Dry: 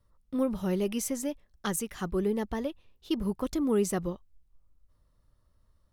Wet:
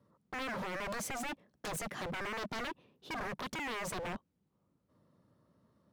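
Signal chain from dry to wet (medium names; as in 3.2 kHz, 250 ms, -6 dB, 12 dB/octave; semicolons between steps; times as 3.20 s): high-pass 170 Hz 24 dB/octave; tilt EQ -3.5 dB/octave; peak limiter -23.5 dBFS, peak gain reduction 12 dB; wavefolder -38.5 dBFS; trim +4.5 dB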